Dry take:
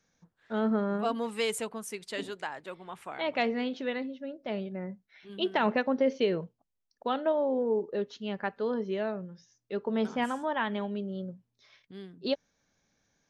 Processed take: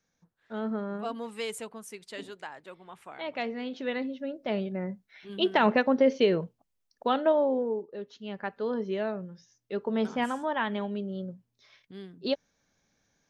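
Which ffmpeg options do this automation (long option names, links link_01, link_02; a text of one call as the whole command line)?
ffmpeg -i in.wav -af "volume=14dB,afade=type=in:start_time=3.61:duration=0.54:silence=0.375837,afade=type=out:start_time=7.37:duration=0.51:silence=0.223872,afade=type=in:start_time=7.88:duration=0.96:silence=0.316228" out.wav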